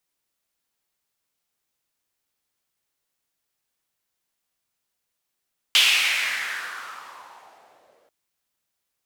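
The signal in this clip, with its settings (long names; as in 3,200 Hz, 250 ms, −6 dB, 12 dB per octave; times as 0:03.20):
filter sweep on noise white, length 2.34 s bandpass, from 3,100 Hz, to 520 Hz, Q 3.6, exponential, gain ramp −39.5 dB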